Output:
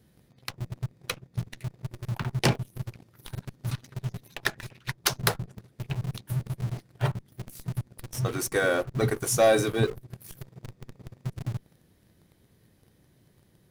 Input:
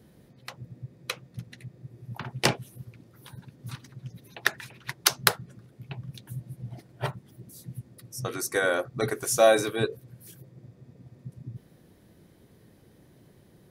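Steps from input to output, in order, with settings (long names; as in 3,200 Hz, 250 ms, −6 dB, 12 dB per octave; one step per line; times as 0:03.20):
low-shelf EQ 190 Hz +11 dB
leveller curve on the samples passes 2
in parallel at −11 dB: comparator with hysteresis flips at −27.5 dBFS
on the sum: one half of a high-frequency compander encoder only
level −8.5 dB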